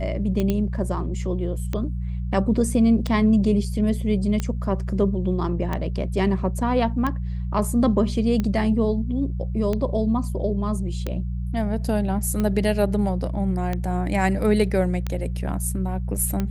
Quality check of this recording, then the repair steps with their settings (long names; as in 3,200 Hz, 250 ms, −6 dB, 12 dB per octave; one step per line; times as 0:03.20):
mains hum 60 Hz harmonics 3 −27 dBFS
scratch tick 45 rpm −13 dBFS
0:00.50: click −11 dBFS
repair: click removal
hum removal 60 Hz, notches 3